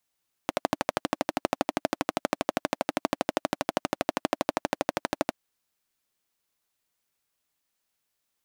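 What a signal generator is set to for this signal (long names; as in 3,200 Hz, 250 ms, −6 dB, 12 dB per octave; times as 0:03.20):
pulse-train model of a single-cylinder engine, steady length 4.84 s, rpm 1,500, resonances 300/600 Hz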